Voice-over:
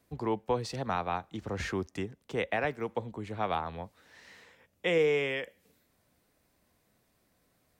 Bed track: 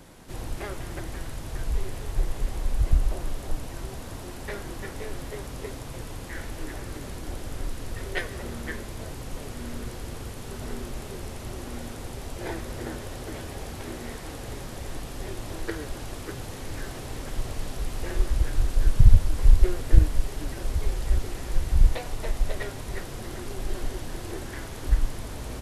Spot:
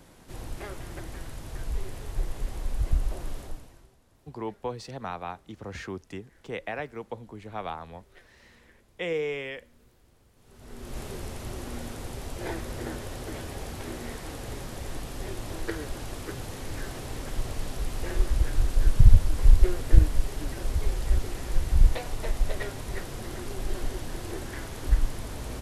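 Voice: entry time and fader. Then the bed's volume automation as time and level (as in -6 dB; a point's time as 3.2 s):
4.15 s, -3.5 dB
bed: 3.4 s -4 dB
3.97 s -25.5 dB
10.31 s -25.5 dB
10.98 s -0.5 dB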